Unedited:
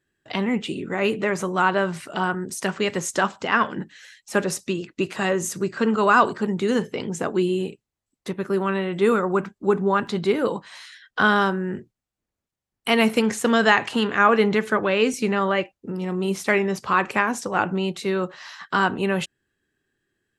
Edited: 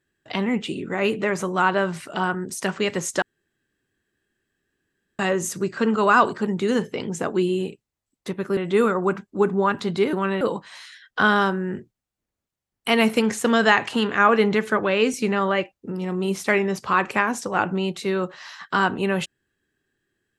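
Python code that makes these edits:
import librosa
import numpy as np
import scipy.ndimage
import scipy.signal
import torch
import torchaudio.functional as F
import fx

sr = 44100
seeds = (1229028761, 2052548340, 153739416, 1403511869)

y = fx.edit(x, sr, fx.room_tone_fill(start_s=3.22, length_s=1.97),
    fx.move(start_s=8.57, length_s=0.28, to_s=10.41), tone=tone)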